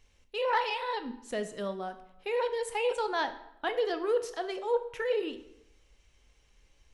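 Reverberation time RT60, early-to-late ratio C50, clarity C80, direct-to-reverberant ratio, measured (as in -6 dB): 0.80 s, 12.5 dB, 15.0 dB, 9.0 dB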